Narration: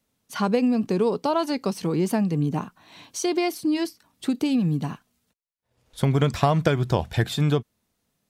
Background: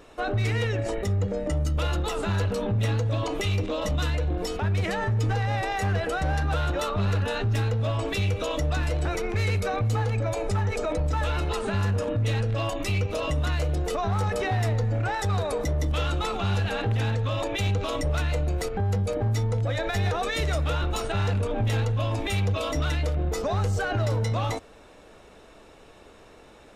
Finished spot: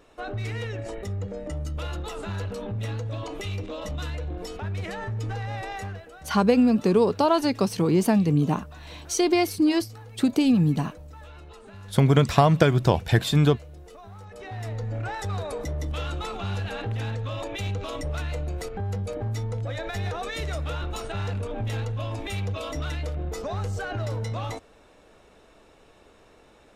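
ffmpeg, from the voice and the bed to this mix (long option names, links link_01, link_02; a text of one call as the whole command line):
ffmpeg -i stem1.wav -i stem2.wav -filter_complex "[0:a]adelay=5950,volume=2.5dB[link_01];[1:a]volume=8dB,afade=type=out:start_time=5.76:duration=0.28:silence=0.237137,afade=type=in:start_time=14.29:duration=0.68:silence=0.199526[link_02];[link_01][link_02]amix=inputs=2:normalize=0" out.wav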